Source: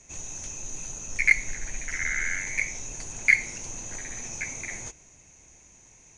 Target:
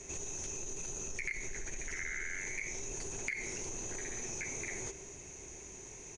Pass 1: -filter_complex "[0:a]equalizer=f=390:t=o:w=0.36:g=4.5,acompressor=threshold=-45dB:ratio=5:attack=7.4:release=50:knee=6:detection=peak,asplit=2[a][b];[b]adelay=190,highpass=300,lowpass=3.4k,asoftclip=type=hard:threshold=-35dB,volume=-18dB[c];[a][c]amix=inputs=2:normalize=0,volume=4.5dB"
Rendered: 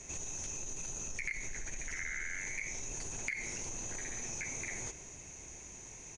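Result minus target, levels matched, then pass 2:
500 Hz band -5.0 dB
-filter_complex "[0:a]equalizer=f=390:t=o:w=0.36:g=14,acompressor=threshold=-45dB:ratio=5:attack=7.4:release=50:knee=6:detection=peak,asplit=2[a][b];[b]adelay=190,highpass=300,lowpass=3.4k,asoftclip=type=hard:threshold=-35dB,volume=-18dB[c];[a][c]amix=inputs=2:normalize=0,volume=4.5dB"

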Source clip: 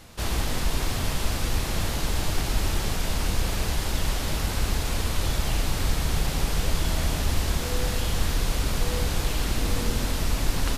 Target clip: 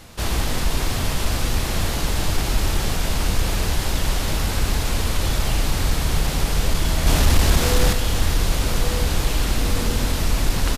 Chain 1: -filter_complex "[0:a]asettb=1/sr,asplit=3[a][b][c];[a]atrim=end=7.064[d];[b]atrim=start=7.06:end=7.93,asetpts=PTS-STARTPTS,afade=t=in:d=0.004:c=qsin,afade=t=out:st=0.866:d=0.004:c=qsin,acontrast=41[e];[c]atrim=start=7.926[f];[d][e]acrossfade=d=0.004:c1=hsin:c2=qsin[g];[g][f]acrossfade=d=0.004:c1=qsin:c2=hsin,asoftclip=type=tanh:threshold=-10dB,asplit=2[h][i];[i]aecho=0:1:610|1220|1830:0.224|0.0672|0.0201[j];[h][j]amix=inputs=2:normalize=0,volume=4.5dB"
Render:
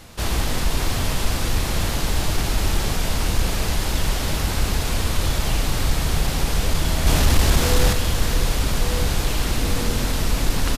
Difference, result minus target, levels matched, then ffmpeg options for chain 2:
echo 0.389 s early
-filter_complex "[0:a]asettb=1/sr,asplit=3[a][b][c];[a]atrim=end=7.064[d];[b]atrim=start=7.06:end=7.93,asetpts=PTS-STARTPTS,afade=t=in:d=0.004:c=qsin,afade=t=out:st=0.866:d=0.004:c=qsin,acontrast=41[e];[c]atrim=start=7.926[f];[d][e]acrossfade=d=0.004:c1=hsin:c2=qsin[g];[g][f]acrossfade=d=0.004:c1=qsin:c2=hsin,asoftclip=type=tanh:threshold=-10dB,asplit=2[h][i];[i]aecho=0:1:999|1998|2997:0.224|0.0672|0.0201[j];[h][j]amix=inputs=2:normalize=0,volume=4.5dB"

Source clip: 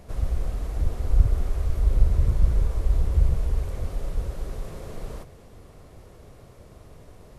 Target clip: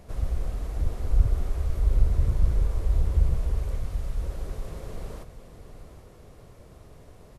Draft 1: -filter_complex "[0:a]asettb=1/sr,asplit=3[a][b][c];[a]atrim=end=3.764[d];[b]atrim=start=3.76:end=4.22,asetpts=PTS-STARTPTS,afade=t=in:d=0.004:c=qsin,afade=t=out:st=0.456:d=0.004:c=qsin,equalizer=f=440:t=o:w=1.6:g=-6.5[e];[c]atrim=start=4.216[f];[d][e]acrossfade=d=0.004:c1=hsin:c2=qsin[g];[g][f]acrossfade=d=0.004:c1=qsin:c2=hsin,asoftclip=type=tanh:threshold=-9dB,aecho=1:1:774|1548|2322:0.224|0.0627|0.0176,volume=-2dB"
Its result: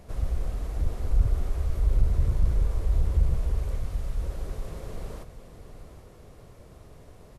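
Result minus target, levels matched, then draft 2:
soft clip: distortion +13 dB
-filter_complex "[0:a]asettb=1/sr,asplit=3[a][b][c];[a]atrim=end=3.764[d];[b]atrim=start=3.76:end=4.22,asetpts=PTS-STARTPTS,afade=t=in:d=0.004:c=qsin,afade=t=out:st=0.456:d=0.004:c=qsin,equalizer=f=440:t=o:w=1.6:g=-6.5[e];[c]atrim=start=4.216[f];[d][e]acrossfade=d=0.004:c1=hsin:c2=qsin[g];[g][f]acrossfade=d=0.004:c1=qsin:c2=hsin,asoftclip=type=tanh:threshold=-0.5dB,aecho=1:1:774|1548|2322:0.224|0.0627|0.0176,volume=-2dB"

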